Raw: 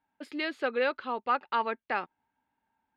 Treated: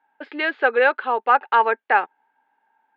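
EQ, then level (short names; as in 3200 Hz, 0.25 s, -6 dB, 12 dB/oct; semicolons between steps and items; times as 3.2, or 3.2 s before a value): speaker cabinet 360–3400 Hz, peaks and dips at 440 Hz +6 dB, 820 Hz +9 dB, 1600 Hz +8 dB; +7.5 dB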